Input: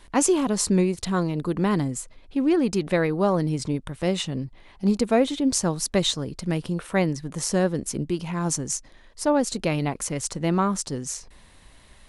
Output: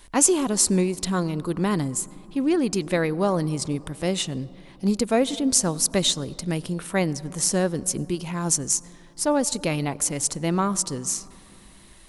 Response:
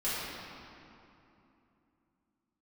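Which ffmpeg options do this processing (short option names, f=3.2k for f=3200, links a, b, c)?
-filter_complex "[0:a]crystalizer=i=1.5:c=0,asplit=2[a][b];[b]highshelf=f=1.5k:t=q:w=1.5:g=-6[c];[1:a]atrim=start_sample=2205,adelay=89[d];[c][d]afir=irnorm=-1:irlink=0,volume=-27dB[e];[a][e]amix=inputs=2:normalize=0,volume=-1dB"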